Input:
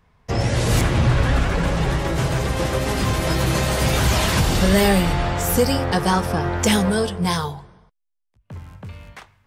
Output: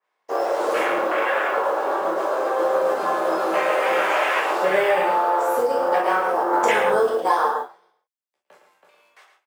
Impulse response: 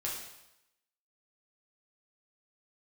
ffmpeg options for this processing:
-filter_complex "[0:a]highpass=f=420:w=0.5412,highpass=f=420:w=1.3066,afwtdn=0.0562,asettb=1/sr,asplit=3[a][b][c];[a]atrim=end=6.534[d];[b]atrim=start=6.53:end=8.56,asetpts=PTS-STARTPTS,afade=t=in:d=0.004:c=qsin,afade=t=out:st=2.026:d=0.004:c=qsin,acontrast=90[e];[c]atrim=start=8.556[f];[d][e]acrossfade=d=0.004:c1=hsin:c2=qsin[g];[g][f]acrossfade=d=0.004:c1=qsin:c2=hsin,asplit=2[h][i];[i]adelay=110.8,volume=-7dB,highshelf=f=4k:g=-2.49[j];[h][j]amix=inputs=2:normalize=0,acompressor=threshold=-22dB:ratio=5,acrusher=bits=7:mode=log:mix=0:aa=0.000001[k];[1:a]atrim=start_sample=2205,atrim=end_sample=3087[l];[k][l]afir=irnorm=-1:irlink=0,adynamicequalizer=threshold=0.00794:dfrequency=3000:dqfactor=0.7:tfrequency=3000:tqfactor=0.7:attack=5:release=100:ratio=0.375:range=2:mode=cutabove:tftype=highshelf,volume=5dB"

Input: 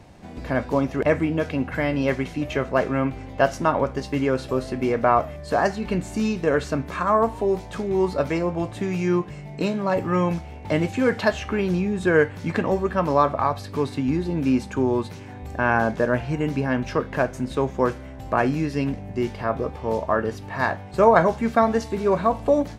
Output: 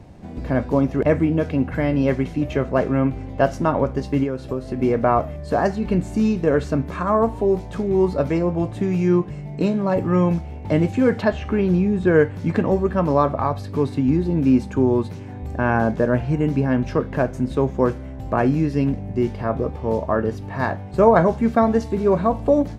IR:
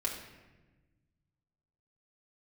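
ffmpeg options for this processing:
-filter_complex "[0:a]asettb=1/sr,asplit=3[a][b][c];[a]atrim=end=4.234[d];[b]atrim=start=4.23:end=4.79,asetpts=PTS-STARTPTS,afade=t=in:d=0.004:c=qsin,afade=t=out:st=0.556:d=0.004:c=qsin,acompressor=threshold=-25dB:ratio=6[e];[c]atrim=start=4.786[f];[d][e]acrossfade=d=0.004:c1=hsin:c2=qsin[g];[g][f]acrossfade=d=0.004:c1=qsin:c2=hsin,tiltshelf=f=650:g=5,asettb=1/sr,asplit=3[h][i][j];[h]atrim=end=11.224[k];[i]atrim=start=11.22:end=12.11,asetpts=PTS-STARTPTS,afade=t=in:d=0.004:c=qsin,afade=t=out:st=0.886:d=0.004:c=qsin,acrossover=split=4500[l][m];[m]acompressor=threshold=-57dB:ratio=4:attack=1:release=60[n];[l][n]amix=inputs=2:normalize=0[o];[j]atrim=start=12.106[p];[k][o]acrossfade=d=0.004:c1=hsin:c2=qsin[q];[q][p]acrossfade=d=0.004:c1=qsin:c2=hsin,volume=1dB"

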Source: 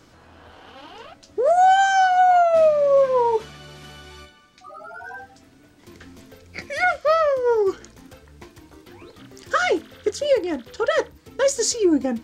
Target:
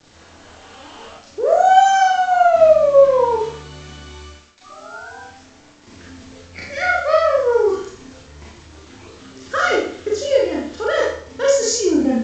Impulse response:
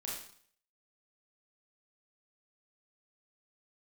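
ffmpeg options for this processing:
-filter_complex "[0:a]equalizer=f=82:t=o:w=0.51:g=5,aresample=16000,acrusher=bits=7:mix=0:aa=0.000001,aresample=44100[a];[1:a]atrim=start_sample=2205[b];[a][b]afir=irnorm=-1:irlink=0,volume=3dB"

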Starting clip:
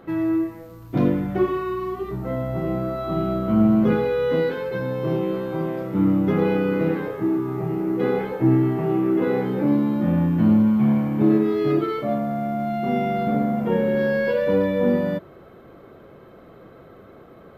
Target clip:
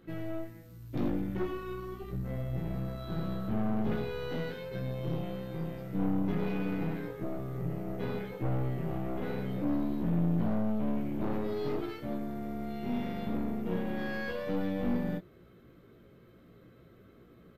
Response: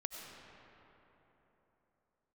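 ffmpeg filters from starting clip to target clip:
-filter_complex "[0:a]equalizer=f=800:w=0.77:g=-15,aeval=exprs='(tanh(17.8*val(0)+0.65)-tanh(0.65))/17.8':c=same,asplit=2[a][b];[b]adelay=17,volume=-5dB[c];[a][c]amix=inputs=2:normalize=0,volume=-3.5dB"

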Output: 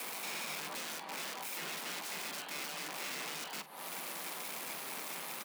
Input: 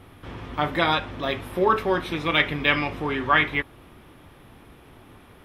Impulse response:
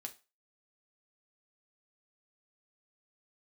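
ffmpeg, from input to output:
-filter_complex "[0:a]aemphasis=mode=production:type=75kf,afftfilt=real='re*lt(hypot(re,im),0.708)':imag='im*lt(hypot(re,im),0.708)':win_size=1024:overlap=0.75,acompressor=threshold=-37dB:ratio=3,asplit=2[a][b];[b]alimiter=level_in=10dB:limit=-24dB:level=0:latency=1:release=459,volume=-10dB,volume=0dB[c];[a][c]amix=inputs=2:normalize=0,acrossover=split=210[d][e];[e]acompressor=threshold=-42dB:ratio=2.5[f];[d][f]amix=inputs=2:normalize=0,asoftclip=type=hard:threshold=-36.5dB,aeval=exprs='val(0)*sin(2*PI*730*n/s)':c=same,aeval=exprs='(mod(94.4*val(0)+1,2)-1)/94.4':c=same,afreqshift=150,asplit=2[g][h];[h]adelay=45,volume=-14dB[i];[g][i]amix=inputs=2:normalize=0,volume=4dB"

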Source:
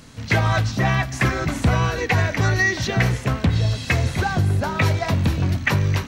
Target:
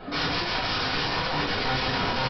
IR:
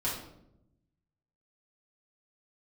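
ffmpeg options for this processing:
-filter_complex "[0:a]lowpass=1.4k,equalizer=f=530:w=0.83:g=7.5,areverse,acompressor=threshold=-27dB:ratio=8,areverse,asplit=4[a][b][c][d];[b]adelay=111,afreqshift=74,volume=-13.5dB[e];[c]adelay=222,afreqshift=148,volume=-23.7dB[f];[d]adelay=333,afreqshift=222,volume=-33.8dB[g];[a][e][f][g]amix=inputs=4:normalize=0,asetrate=116865,aresample=44100,aresample=11025,aeval=exprs='(mod(22.4*val(0)+1,2)-1)/22.4':c=same,aresample=44100[h];[1:a]atrim=start_sample=2205,afade=t=out:st=0.15:d=0.01,atrim=end_sample=7056[i];[h][i]afir=irnorm=-1:irlink=0"

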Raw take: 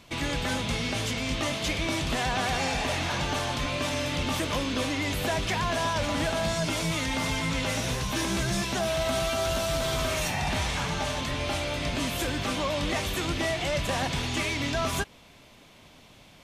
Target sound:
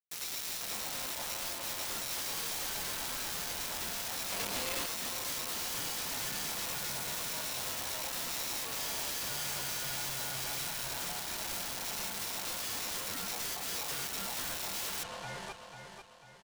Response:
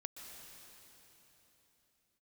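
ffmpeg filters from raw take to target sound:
-filter_complex "[0:a]aemphasis=mode=reproduction:type=cd,acrusher=bits=4:mix=0:aa=0.000001,aeval=exprs='val(0)*sin(2*PI*790*n/s)':c=same,lowpass=8.8k,aecho=1:1:494|988|1482|1976:0.178|0.0782|0.0344|0.0151,asoftclip=type=tanh:threshold=-19dB,asettb=1/sr,asplit=3[a][b][c];[a]atrim=end=4.324[d];[b]atrim=start=4.32:end=4.86,asetpts=PTS-STARTPTS,afade=t=in:d=0.004:c=qsin,afade=t=out:st=0.536:d=0.004:c=qsin,equalizer=f=560:t=o:w=0.8:g=-9.5[e];[c]atrim=start=4.856[f];[d][e]acrossfade=d=0.004:c1=hsin:c2=qsin[g];[g][f]acrossfade=d=0.004:c1=qsin:c2=hsin,aeval=exprs='(mod(37.6*val(0)+1,2)-1)/37.6':c=same,volume=2.5dB"

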